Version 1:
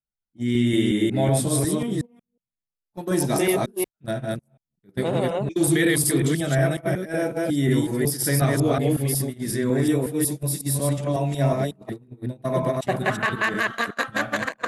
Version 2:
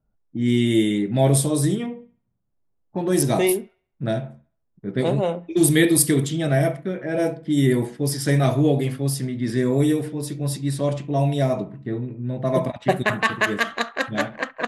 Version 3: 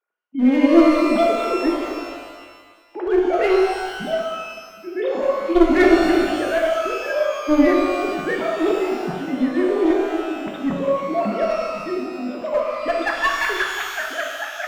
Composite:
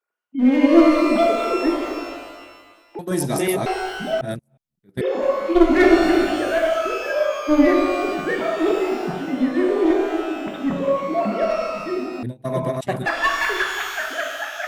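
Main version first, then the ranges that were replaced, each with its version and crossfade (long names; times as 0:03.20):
3
0:02.99–0:03.66: punch in from 1
0:04.21–0:05.01: punch in from 1
0:12.23–0:13.06: punch in from 1
not used: 2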